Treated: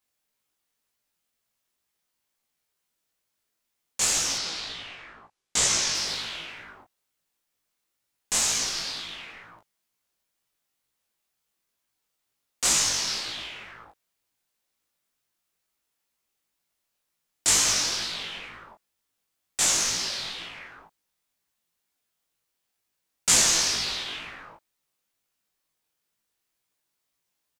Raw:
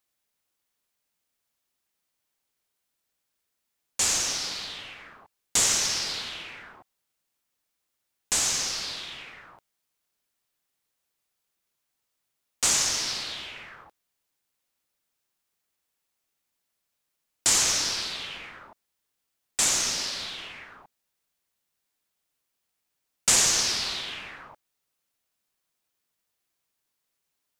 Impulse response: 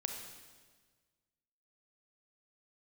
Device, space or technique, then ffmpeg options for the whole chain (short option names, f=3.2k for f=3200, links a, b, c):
double-tracked vocal: -filter_complex "[0:a]asplit=2[a][b];[b]adelay=18,volume=-3dB[c];[a][c]amix=inputs=2:normalize=0,flanger=delay=17:depth=7.3:speed=2.1,asettb=1/sr,asplit=3[d][e][f];[d]atrim=end=4.384[g];[e]atrim=start=4.38:end=5.95,asetpts=PTS-STARTPTS,afade=t=in:d=0.004:c=qsin,afade=t=out:st=1.566:d=0.004:c=qsin,lowpass=8.2k[h];[f]atrim=start=5.946[i];[g][h]acrossfade=d=0.004:c1=hsin:c2=qsin[j];[j][i]acrossfade=d=0.004:c1=qsin:c2=hsin,volume=2dB"